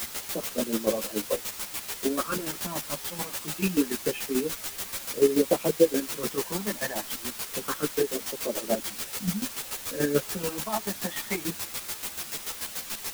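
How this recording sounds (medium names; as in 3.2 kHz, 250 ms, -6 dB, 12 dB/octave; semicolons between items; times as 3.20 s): phasing stages 12, 0.25 Hz, lowest notch 440–2200 Hz; a quantiser's noise floor 6-bit, dither triangular; chopped level 6.9 Hz, depth 65%, duty 30%; a shimmering, thickened sound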